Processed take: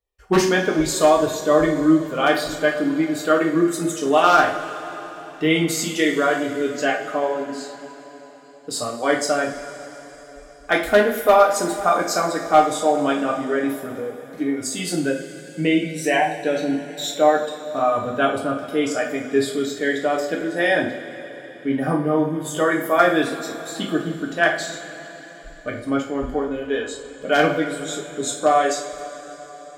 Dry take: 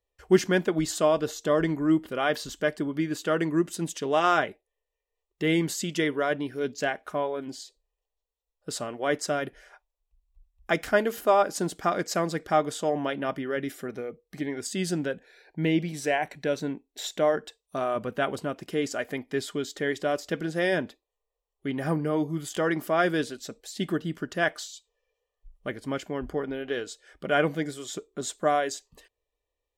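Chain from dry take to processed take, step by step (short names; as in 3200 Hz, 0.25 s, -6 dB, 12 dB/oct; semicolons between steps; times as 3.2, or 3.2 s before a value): spectral noise reduction 9 dB; wavefolder -12.5 dBFS; two-slope reverb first 0.41 s, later 4.3 s, from -18 dB, DRR -1.5 dB; gain +5 dB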